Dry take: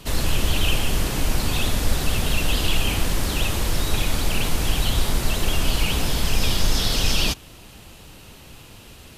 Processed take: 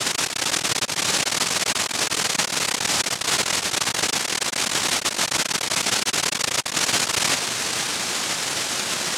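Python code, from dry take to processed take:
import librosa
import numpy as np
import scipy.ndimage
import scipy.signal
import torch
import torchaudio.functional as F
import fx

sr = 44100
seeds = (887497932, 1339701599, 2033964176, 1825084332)

y = fx.fuzz(x, sr, gain_db=44.0, gate_db=-48.0)
y = fx.noise_vocoder(y, sr, seeds[0], bands=1)
y = y * 10.0 ** (-4.0 / 20.0)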